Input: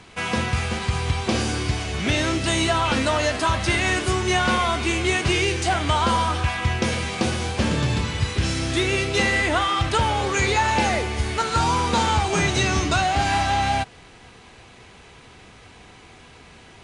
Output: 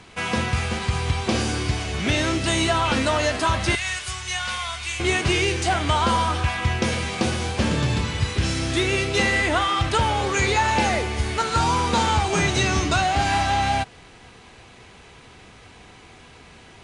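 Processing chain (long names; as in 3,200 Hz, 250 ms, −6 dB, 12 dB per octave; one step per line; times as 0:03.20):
0:03.75–0:05.00: guitar amp tone stack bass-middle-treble 10-0-10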